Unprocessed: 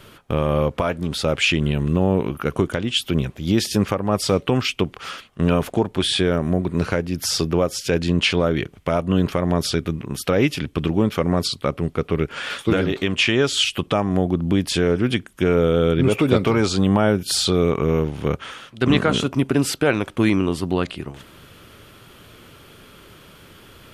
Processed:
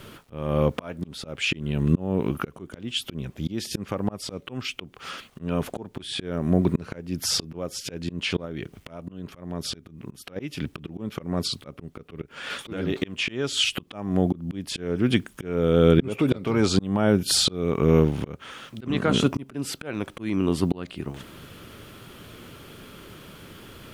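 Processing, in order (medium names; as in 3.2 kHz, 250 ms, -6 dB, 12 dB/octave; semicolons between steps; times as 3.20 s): peaking EQ 220 Hz +4 dB 1.8 oct; bit crusher 10-bit; 8.45–10.36 s: compression 10:1, threshold -19 dBFS, peak gain reduction 10 dB; slow attack 487 ms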